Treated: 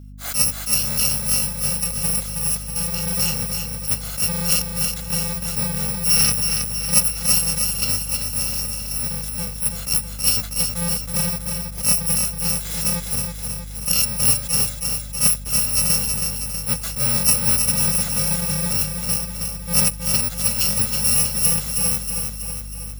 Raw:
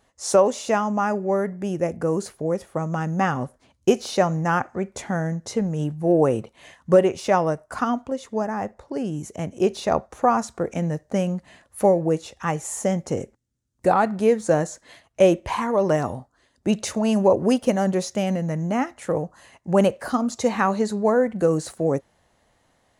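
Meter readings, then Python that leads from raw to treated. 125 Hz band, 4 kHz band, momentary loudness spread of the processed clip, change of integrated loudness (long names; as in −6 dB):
+0.5 dB, +14.5 dB, 8 LU, +4.5 dB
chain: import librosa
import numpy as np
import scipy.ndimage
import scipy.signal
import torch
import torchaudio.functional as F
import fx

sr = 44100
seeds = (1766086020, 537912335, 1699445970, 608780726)

p1 = fx.bit_reversed(x, sr, seeds[0], block=128)
p2 = fx.spec_box(p1, sr, start_s=6.1, length_s=0.21, low_hz=1200.0, high_hz=6200.0, gain_db=7)
p3 = fx.add_hum(p2, sr, base_hz=50, snr_db=16)
p4 = p3 + fx.echo_feedback(p3, sr, ms=321, feedback_pct=59, wet_db=-5.5, dry=0)
y = fx.attack_slew(p4, sr, db_per_s=170.0)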